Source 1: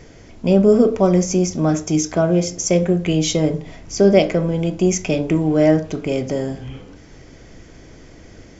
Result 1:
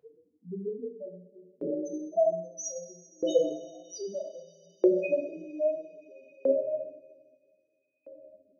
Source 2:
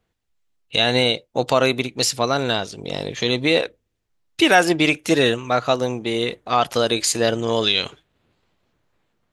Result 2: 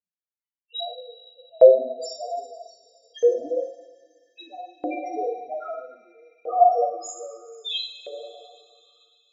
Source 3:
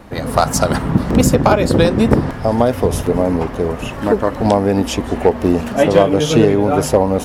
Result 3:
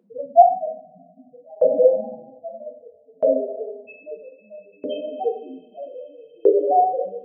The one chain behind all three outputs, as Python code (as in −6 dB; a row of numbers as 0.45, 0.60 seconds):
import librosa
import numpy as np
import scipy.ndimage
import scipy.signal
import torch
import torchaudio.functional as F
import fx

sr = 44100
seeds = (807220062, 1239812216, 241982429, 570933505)

y = fx.highpass(x, sr, hz=65.0, slope=6)
y = fx.spec_topn(y, sr, count=1)
y = fx.rev_double_slope(y, sr, seeds[0], early_s=0.57, late_s=4.6, knee_db=-18, drr_db=-1.0)
y = fx.filter_lfo_highpass(y, sr, shape='saw_up', hz=0.62, low_hz=500.0, high_hz=2400.0, q=5.2)
y = y * librosa.db_to_amplitude(-1.0)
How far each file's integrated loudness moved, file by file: −13.5, −3.5, −4.5 LU